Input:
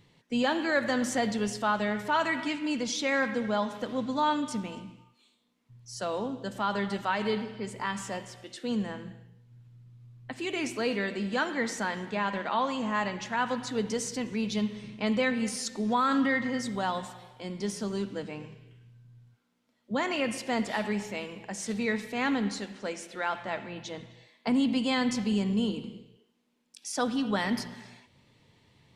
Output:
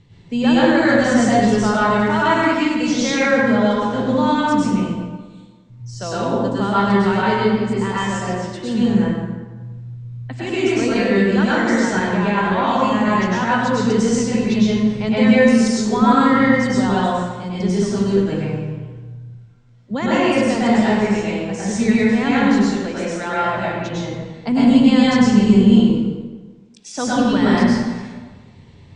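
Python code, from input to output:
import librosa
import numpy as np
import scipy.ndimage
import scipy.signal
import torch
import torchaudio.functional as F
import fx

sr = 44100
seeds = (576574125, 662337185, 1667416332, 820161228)

y = scipy.signal.sosfilt(scipy.signal.butter(8, 8400.0, 'lowpass', fs=sr, output='sos'), x)
y = fx.low_shelf(y, sr, hz=220.0, db=12.0)
y = fx.rev_plate(y, sr, seeds[0], rt60_s=1.3, hf_ratio=0.55, predelay_ms=90, drr_db=-8.0)
y = y * 10.0 ** (2.0 / 20.0)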